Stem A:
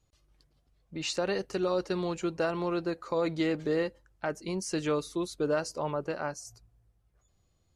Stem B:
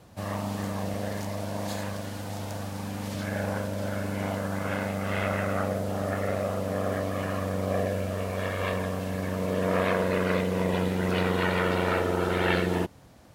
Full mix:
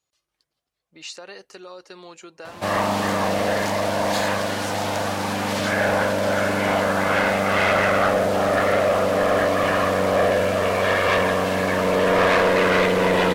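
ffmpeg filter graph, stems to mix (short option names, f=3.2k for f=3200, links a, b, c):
-filter_complex "[0:a]acompressor=threshold=-29dB:ratio=6,highpass=f=980:p=1,volume=-0.5dB[a];[1:a]asplit=2[b][c];[c]highpass=f=720:p=1,volume=22dB,asoftclip=type=tanh:threshold=-11dB[d];[b][d]amix=inputs=2:normalize=0,lowpass=f=3.5k:p=1,volume=-6dB,adelay=2450,volume=2dB[e];[a][e]amix=inputs=2:normalize=0"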